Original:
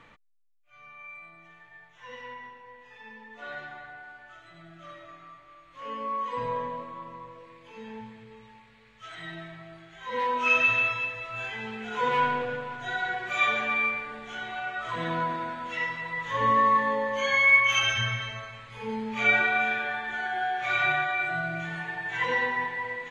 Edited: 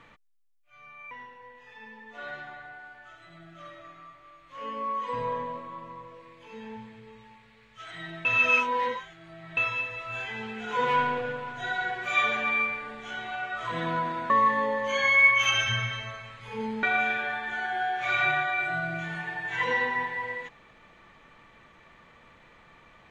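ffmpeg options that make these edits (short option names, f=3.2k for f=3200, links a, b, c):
-filter_complex "[0:a]asplit=6[a][b][c][d][e][f];[a]atrim=end=1.112[g];[b]atrim=start=2.348:end=9.492[h];[c]atrim=start=9.488:end=10.812,asetpts=PTS-STARTPTS,areverse[i];[d]atrim=start=10.808:end=15.542[j];[e]atrim=start=16.588:end=19.122[k];[f]atrim=start=19.438[l];[g][h]acrossfade=d=0.004:c1=hsin:c2=hsin[m];[m][i]acrossfade=d=0.004:c1=hsin:c2=hsin[n];[n][j]acrossfade=d=0.004:c1=hsin:c2=hsin[o];[o][k]acrossfade=d=0.004:c1=hsin:c2=hsin[p];[p][l]acrossfade=d=0.004:c1=hsin:c2=hsin"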